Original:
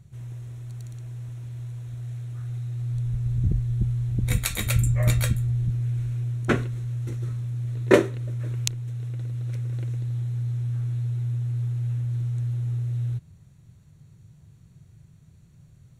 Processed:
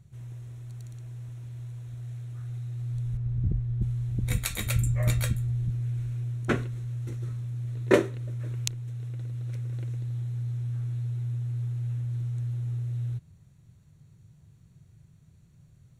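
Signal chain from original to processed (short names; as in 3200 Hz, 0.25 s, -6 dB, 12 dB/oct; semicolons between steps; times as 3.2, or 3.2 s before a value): 3.17–3.82 LPF 1700 Hz 6 dB/oct; gain -4 dB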